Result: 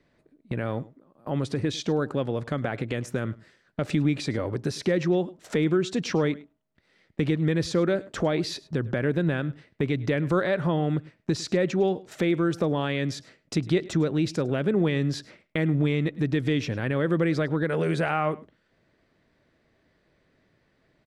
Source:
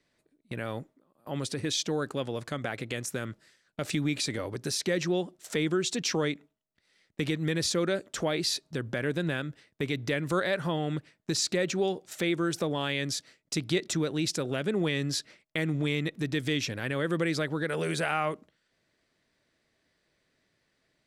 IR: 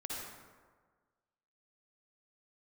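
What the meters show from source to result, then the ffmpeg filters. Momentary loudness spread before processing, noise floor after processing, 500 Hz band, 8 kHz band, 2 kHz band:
8 LU, -69 dBFS, +5.0 dB, -7.5 dB, +0.5 dB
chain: -filter_complex "[0:a]lowpass=f=1.4k:p=1,lowshelf=f=200:g=3,asplit=2[a][b];[b]acompressor=threshold=-40dB:ratio=6,volume=0dB[c];[a][c]amix=inputs=2:normalize=0,aecho=1:1:104:0.0891,volume=3dB"

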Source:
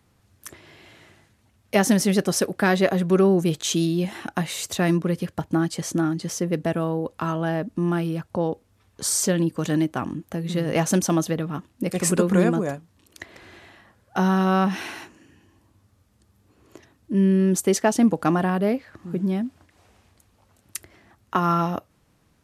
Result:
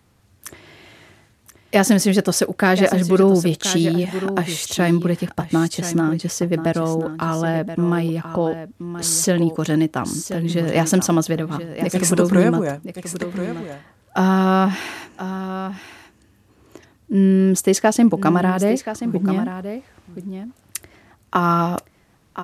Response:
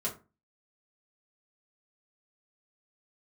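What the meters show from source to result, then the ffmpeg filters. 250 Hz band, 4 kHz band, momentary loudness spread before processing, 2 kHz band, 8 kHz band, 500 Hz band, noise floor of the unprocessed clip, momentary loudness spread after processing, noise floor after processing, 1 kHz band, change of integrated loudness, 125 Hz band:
+4.5 dB, +4.5 dB, 11 LU, +4.5 dB, +4.5 dB, +4.5 dB, -63 dBFS, 15 LU, -57 dBFS, +4.5 dB, +4.0 dB, +4.5 dB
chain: -af "aecho=1:1:1028:0.282,volume=4dB"

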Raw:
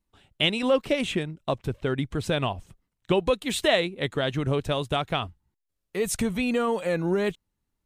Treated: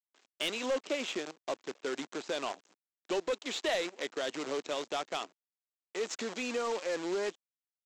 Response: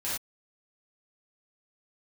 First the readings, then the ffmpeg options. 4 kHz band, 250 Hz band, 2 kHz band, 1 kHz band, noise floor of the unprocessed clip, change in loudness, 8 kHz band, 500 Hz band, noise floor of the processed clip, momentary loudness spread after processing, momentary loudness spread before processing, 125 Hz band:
-8.5 dB, -12.5 dB, -8.0 dB, -8.0 dB, -81 dBFS, -9.0 dB, -6.0 dB, -8.5 dB, under -85 dBFS, 7 LU, 7 LU, -28.5 dB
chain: -af "aresample=16000,acrusher=bits=6:dc=4:mix=0:aa=0.000001,aresample=44100,highpass=f=290:w=0.5412,highpass=f=290:w=1.3066,asoftclip=type=tanh:threshold=-19.5dB,volume=-6dB"

